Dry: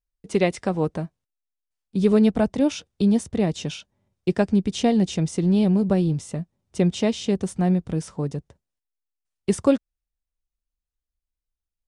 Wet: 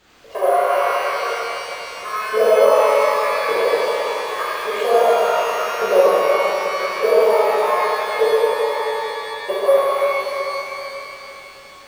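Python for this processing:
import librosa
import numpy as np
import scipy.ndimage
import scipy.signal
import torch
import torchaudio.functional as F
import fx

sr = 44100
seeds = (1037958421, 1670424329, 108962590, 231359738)

p1 = np.clip(x, -10.0 ** (-19.0 / 20.0), 10.0 ** (-19.0 / 20.0))
p2 = p1 + 0.96 * np.pad(p1, (int(1.8 * sr / 1000.0), 0))[:len(p1)]
p3 = p2 + fx.echo_feedback(p2, sr, ms=102, feedback_pct=51, wet_db=-8, dry=0)
p4 = fx.env_lowpass_down(p3, sr, base_hz=1600.0, full_db=-21.0)
p5 = scipy.signal.sosfilt(scipy.signal.butter(4, 240.0, 'highpass', fs=sr, output='sos'), p4)
p6 = fx.filter_lfo_highpass(p5, sr, shape='saw_up', hz=0.86, low_hz=430.0, high_hz=1700.0, q=5.1)
p7 = fx.quant_dither(p6, sr, seeds[0], bits=6, dither='triangular')
p8 = p6 + F.gain(torch.from_numpy(p7), -6.0).numpy()
p9 = np.repeat(scipy.signal.resample_poly(p8, 1, 4), 4)[:len(p8)]
p10 = fx.high_shelf(p9, sr, hz=4700.0, db=-9.5)
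p11 = fx.rev_shimmer(p10, sr, seeds[1], rt60_s=3.6, semitones=12, shimmer_db=-8, drr_db=-11.0)
y = F.gain(torch.from_numpy(p11), -9.0).numpy()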